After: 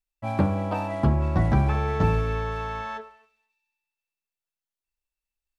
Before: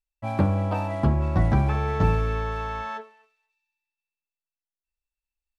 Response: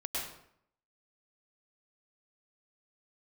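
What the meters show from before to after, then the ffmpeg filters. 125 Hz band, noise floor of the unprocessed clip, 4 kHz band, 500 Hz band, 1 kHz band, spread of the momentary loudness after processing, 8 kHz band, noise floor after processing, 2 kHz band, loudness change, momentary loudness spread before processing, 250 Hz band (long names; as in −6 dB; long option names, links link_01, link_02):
−0.5 dB, below −85 dBFS, +0.5 dB, +0.5 dB, 0.0 dB, 10 LU, can't be measured, below −85 dBFS, 0.0 dB, −0.5 dB, 9 LU, +0.5 dB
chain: -filter_complex "[0:a]bandreject=frequency=50:width_type=h:width=6,bandreject=frequency=100:width_type=h:width=6,asplit=2[link_01][link_02];[1:a]atrim=start_sample=2205,asetrate=52920,aresample=44100[link_03];[link_02][link_03]afir=irnorm=-1:irlink=0,volume=-23dB[link_04];[link_01][link_04]amix=inputs=2:normalize=0"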